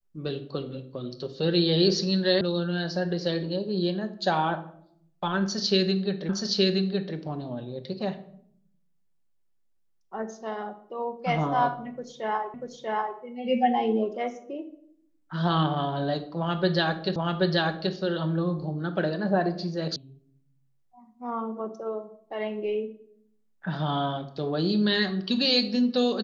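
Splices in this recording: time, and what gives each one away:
0:02.41: cut off before it has died away
0:06.29: the same again, the last 0.87 s
0:12.54: the same again, the last 0.64 s
0:17.16: the same again, the last 0.78 s
0:19.96: cut off before it has died away

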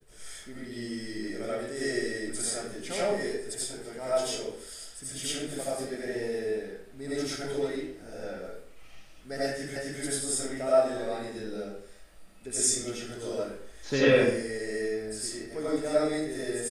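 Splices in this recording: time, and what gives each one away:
0:09.76: the same again, the last 0.26 s

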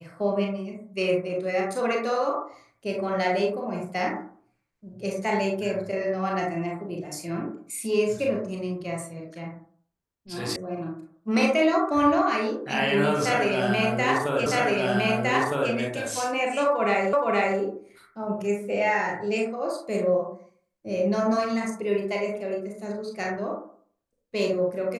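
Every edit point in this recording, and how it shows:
0:10.56: cut off before it has died away
0:14.46: the same again, the last 1.26 s
0:17.13: the same again, the last 0.47 s

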